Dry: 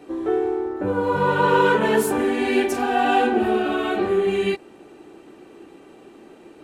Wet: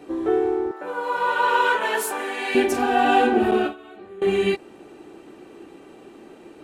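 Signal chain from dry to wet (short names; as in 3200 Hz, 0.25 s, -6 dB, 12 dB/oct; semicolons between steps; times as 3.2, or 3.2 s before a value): 0.71–2.55 HPF 740 Hz 12 dB/oct; 3.51–4.22 gate with hold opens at -10 dBFS; gain +1 dB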